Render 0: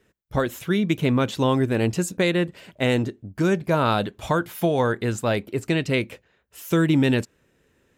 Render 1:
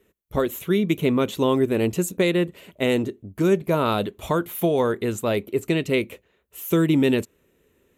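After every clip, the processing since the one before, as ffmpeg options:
ffmpeg -i in.wav -af "equalizer=frequency=125:width_type=o:width=0.33:gain=-7,equalizer=frequency=400:width_type=o:width=0.33:gain=5,equalizer=frequency=800:width_type=o:width=0.33:gain=-4,equalizer=frequency=1600:width_type=o:width=0.33:gain=-7,equalizer=frequency=5000:width_type=o:width=0.33:gain=-9,equalizer=frequency=12500:width_type=o:width=0.33:gain=10" out.wav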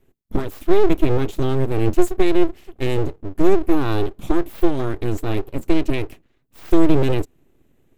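ffmpeg -i in.wav -af "lowshelf=frequency=270:width_type=q:width=3:gain=13,aeval=exprs='abs(val(0))':channel_layout=same,volume=-4dB" out.wav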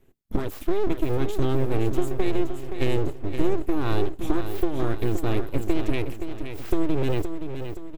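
ffmpeg -i in.wav -af "acompressor=threshold=-17dB:ratio=6,aecho=1:1:521|1042|1563|2084|2605:0.376|0.173|0.0795|0.0366|0.0168" out.wav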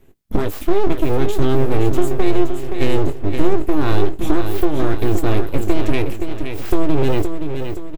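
ffmpeg -i in.wav -filter_complex "[0:a]asplit=2[link_01][link_02];[link_02]volume=17.5dB,asoftclip=hard,volume=-17.5dB,volume=-6.5dB[link_03];[link_01][link_03]amix=inputs=2:normalize=0,asplit=2[link_04][link_05];[link_05]adelay=20,volume=-10dB[link_06];[link_04][link_06]amix=inputs=2:normalize=0,volume=4.5dB" out.wav

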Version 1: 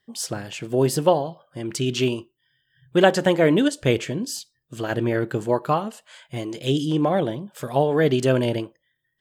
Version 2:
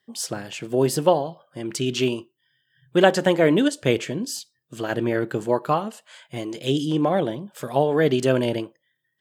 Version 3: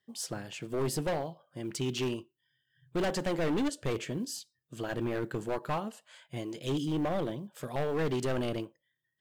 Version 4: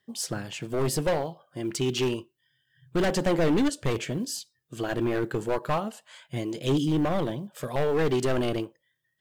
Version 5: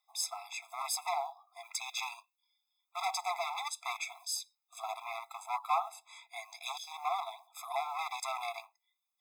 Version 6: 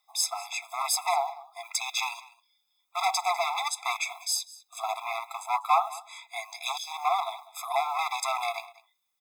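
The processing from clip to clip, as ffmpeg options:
ffmpeg -i in.wav -af "highpass=130" out.wav
ffmpeg -i in.wav -af "acrusher=bits=9:mode=log:mix=0:aa=0.000001,volume=19.5dB,asoftclip=hard,volume=-19.5dB,lowshelf=frequency=100:gain=9.5,volume=-8.5dB" out.wav
ffmpeg -i in.wav -af "aphaser=in_gain=1:out_gain=1:delay=3:decay=0.22:speed=0.3:type=triangular,volume=5.5dB" out.wav
ffmpeg -i in.wav -af "afftfilt=real='re*eq(mod(floor(b*sr/1024/670),2),1)':imag='im*eq(mod(floor(b*sr/1024/670),2),1)':win_size=1024:overlap=0.75" out.wav
ffmpeg -i in.wav -af "aecho=1:1:199:0.1,volume=8dB" out.wav

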